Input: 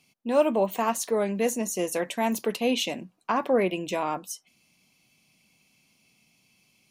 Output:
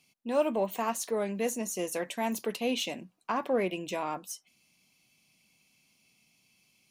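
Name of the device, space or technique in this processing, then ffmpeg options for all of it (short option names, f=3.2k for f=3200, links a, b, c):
exciter from parts: -filter_complex "[0:a]asplit=2[a][b];[b]highpass=f=2.4k:p=1,asoftclip=type=tanh:threshold=-39dB,volume=-5dB[c];[a][c]amix=inputs=2:normalize=0,volume=-5.5dB"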